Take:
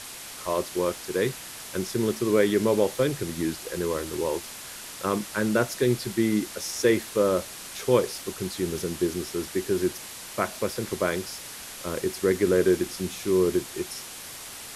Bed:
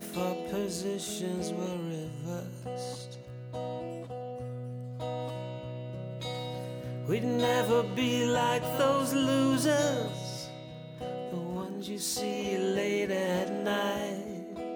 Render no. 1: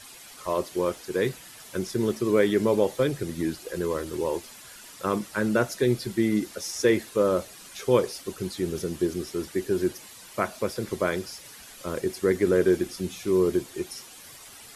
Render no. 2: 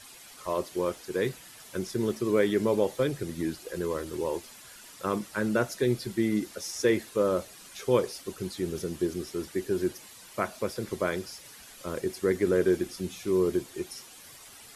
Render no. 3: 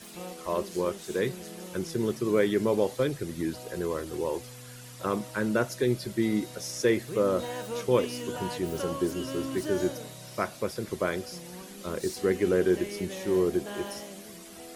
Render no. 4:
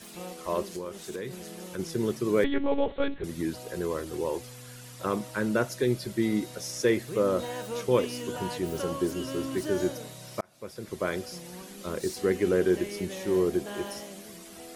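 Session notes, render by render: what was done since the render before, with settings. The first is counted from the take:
broadband denoise 10 dB, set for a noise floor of −41 dBFS
level −3 dB
mix in bed −9 dB
0:00.62–0:01.79: downward compressor 5 to 1, threshold −32 dBFS; 0:02.44–0:03.24: one-pitch LPC vocoder at 8 kHz 280 Hz; 0:10.41–0:11.16: fade in

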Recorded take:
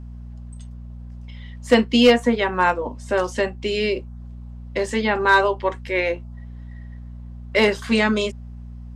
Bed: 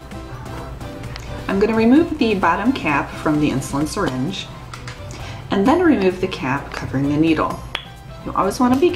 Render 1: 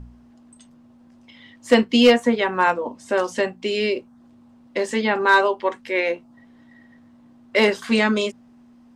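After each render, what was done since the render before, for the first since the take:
hum removal 60 Hz, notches 3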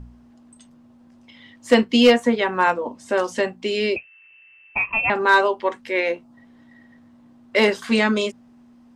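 0:03.96–0:05.10: voice inversion scrambler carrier 2,900 Hz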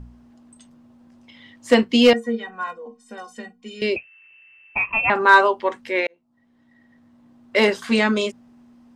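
0:02.13–0:03.82: stiff-string resonator 220 Hz, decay 0.2 s, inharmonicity 0.03
0:04.80–0:05.53: dynamic equaliser 1,200 Hz, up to +5 dB, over −29 dBFS, Q 1.4
0:06.07–0:07.57: fade in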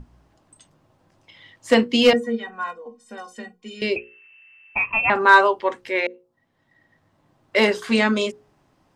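mains-hum notches 60/120/180/240/300/360/420/480/540 Hz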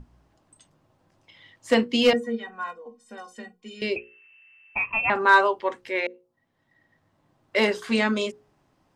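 level −4 dB

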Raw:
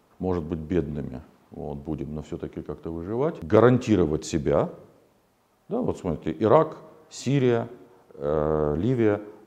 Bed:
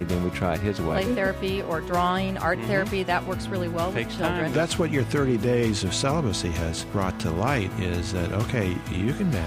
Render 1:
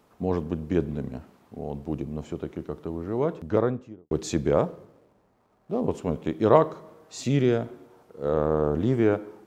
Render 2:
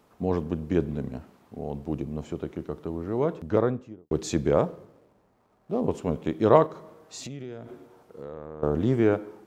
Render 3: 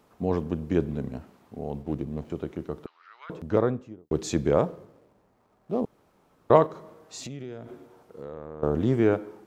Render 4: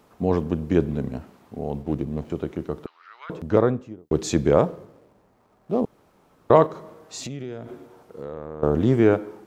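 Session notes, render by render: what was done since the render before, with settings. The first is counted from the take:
0:03.09–0:04.11: fade out and dull; 0:04.68–0:05.81: running median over 15 samples; 0:07.23–0:07.66: parametric band 970 Hz −7.5 dB 0.91 octaves
0:06.66–0:08.63: downward compressor, threshold −35 dBFS
0:01.82–0:02.30: running median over 25 samples; 0:02.86–0:03.30: Chebyshev band-pass filter 1,300–4,800 Hz, order 3; 0:05.85–0:06.50: fill with room tone
level +4.5 dB; brickwall limiter −2 dBFS, peak gain reduction 3 dB

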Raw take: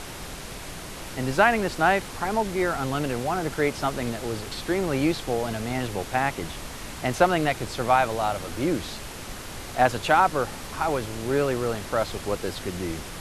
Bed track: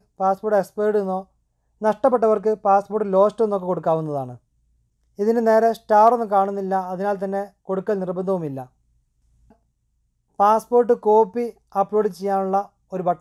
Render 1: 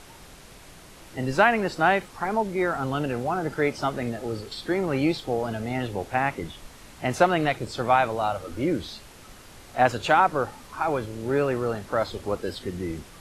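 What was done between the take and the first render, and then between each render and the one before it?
noise reduction from a noise print 10 dB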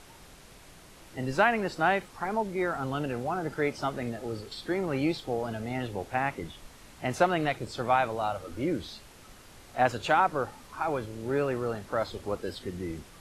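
level −4.5 dB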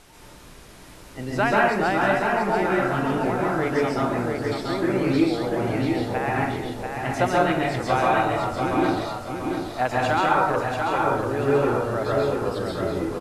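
on a send: repeating echo 688 ms, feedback 40%, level −5 dB
on the sum: dense smooth reverb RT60 0.72 s, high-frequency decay 0.55×, pre-delay 120 ms, DRR −4 dB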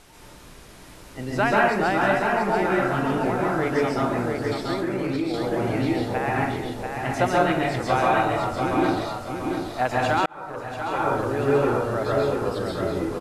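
0:04.74–0:05.34: downward compressor 4 to 1, threshold −22 dBFS
0:10.26–0:11.21: fade in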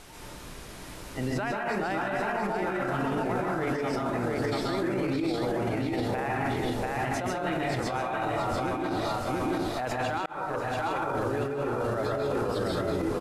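compressor whose output falls as the input rises −26 dBFS, ratio −1
brickwall limiter −20.5 dBFS, peak gain reduction 9 dB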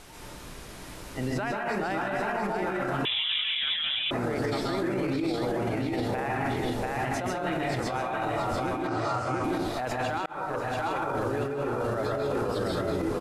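0:03.05–0:04.11: voice inversion scrambler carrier 3,700 Hz
0:08.87–0:09.44: loudspeaker in its box 110–8,600 Hz, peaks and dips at 120 Hz +9 dB, 200 Hz −10 dB, 1,300 Hz +6 dB, 3,700 Hz −9 dB

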